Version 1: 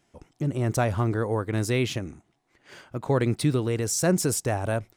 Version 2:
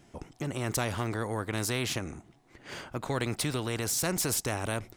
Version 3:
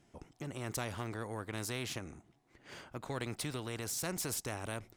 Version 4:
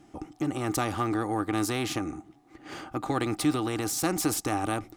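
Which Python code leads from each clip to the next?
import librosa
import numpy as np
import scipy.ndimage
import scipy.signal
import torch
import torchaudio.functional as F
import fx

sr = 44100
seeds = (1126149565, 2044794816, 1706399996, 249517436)

y1 = fx.low_shelf(x, sr, hz=420.0, db=7.5)
y1 = fx.spectral_comp(y1, sr, ratio=2.0)
y1 = F.gain(torch.from_numpy(y1), -8.0).numpy()
y2 = fx.cheby_harmonics(y1, sr, harmonics=(7,), levels_db=(-34,), full_scale_db=-13.0)
y2 = F.gain(torch.from_numpy(y2), -7.5).numpy()
y3 = fx.small_body(y2, sr, hz=(310.0, 780.0, 1200.0), ring_ms=70, db=15)
y3 = F.gain(torch.from_numpy(y3), 7.0).numpy()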